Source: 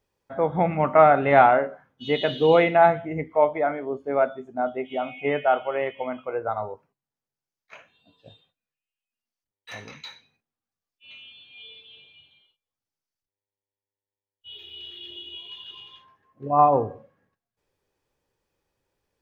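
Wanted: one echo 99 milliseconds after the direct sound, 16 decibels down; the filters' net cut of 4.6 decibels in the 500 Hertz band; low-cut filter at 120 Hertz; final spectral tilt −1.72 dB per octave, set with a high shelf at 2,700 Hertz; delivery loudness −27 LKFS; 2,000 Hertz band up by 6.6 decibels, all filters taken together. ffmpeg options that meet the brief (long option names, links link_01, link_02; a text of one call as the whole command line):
ffmpeg -i in.wav -af "highpass=120,equalizer=frequency=500:width_type=o:gain=-7,equalizer=frequency=2000:width_type=o:gain=6,highshelf=frequency=2700:gain=7,aecho=1:1:99:0.158,volume=-4dB" out.wav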